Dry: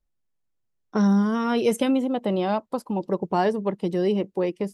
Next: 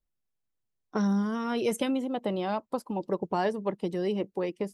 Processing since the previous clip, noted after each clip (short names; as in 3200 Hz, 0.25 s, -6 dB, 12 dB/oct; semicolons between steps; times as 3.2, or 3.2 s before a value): harmonic-percussive split percussive +4 dB; gain -7 dB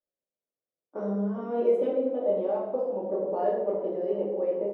band-pass 510 Hz, Q 4.3; frequency-shifting echo 0.397 s, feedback 53%, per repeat +80 Hz, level -21 dB; shoebox room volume 280 m³, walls mixed, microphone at 2.5 m; gain +1.5 dB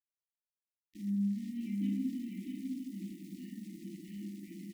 sample gate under -47.5 dBFS; brick-wall FIR band-stop 330–1800 Hz; echo 0.652 s -3.5 dB; gain -2.5 dB